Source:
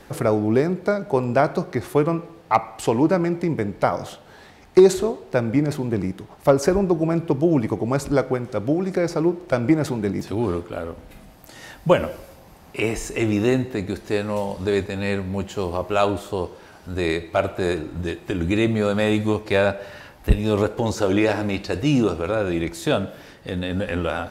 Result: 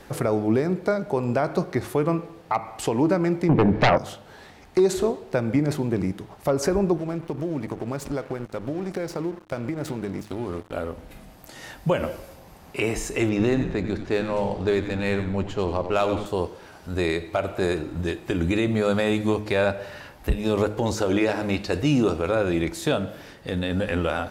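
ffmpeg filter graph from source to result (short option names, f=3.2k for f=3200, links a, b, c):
-filter_complex "[0:a]asettb=1/sr,asplit=3[a][b][c];[a]atrim=end=3.494[d];[b]atrim=start=3.49:end=3.98,asetpts=PTS-STARTPTS,afade=t=in:d=0.004:c=qsin,afade=t=out:st=0.486:d=0.004:c=qsin,lowpass=f=2.5k:p=1,aemphasis=mode=reproduction:type=75kf,aeval=exprs='0.531*sin(PI/2*3.98*val(0)/0.531)':c=same[e];[c]atrim=start=3.976[f];[d][e]acrossfade=d=0.004:c1=hsin:c2=qsin[g];[g][f]acrossfade=d=0.004:c1=qsin:c2=hsin,asettb=1/sr,asplit=3[h][i][j];[h]atrim=end=6.974[k];[i]atrim=start=6.97:end=10.73,asetpts=PTS-STARTPTS,afade=t=in:d=0.004:c=qsin,afade=t=out:st=3.756:d=0.004:c=qsin,aeval=exprs='sgn(val(0))*max(abs(val(0))-0.015,0)':c=same,acompressor=threshold=-25dB:ratio=4:attack=3.2:release=140:knee=1:detection=peak[l];[j]atrim=start=10.726[m];[k][l]acrossfade=d=0.004:c1=hsin:c2=qsin[n];[n][m]acrossfade=d=0.004:c1=qsin:c2=hsin,asettb=1/sr,asplit=3[o][p][q];[o]atrim=end=13.294[r];[p]atrim=start=13.29:end=16.26,asetpts=PTS-STARTPTS,afade=t=in:d=0.004:c=qsin,afade=t=out:st=2.966:d=0.004:c=qsin,adynamicsmooth=sensitivity=3:basefreq=4.4k,asplit=5[s][t][u][v][w];[t]adelay=93,afreqshift=-90,volume=-10dB[x];[u]adelay=186,afreqshift=-180,volume=-19.4dB[y];[v]adelay=279,afreqshift=-270,volume=-28.7dB[z];[w]adelay=372,afreqshift=-360,volume=-38.1dB[aa];[s][x][y][z][aa]amix=inputs=5:normalize=0,atrim=end_sample=130977[ab];[q]atrim=start=16.256[ac];[r][ab]acrossfade=d=0.004:c1=hsin:c2=qsin[ad];[ad][ac]acrossfade=d=0.004:c1=qsin:c2=hsin,bandreject=f=104.6:t=h:w=4,bandreject=f=209.2:t=h:w=4,bandreject=f=313.8:t=h:w=4,alimiter=limit=-11.5dB:level=0:latency=1:release=140"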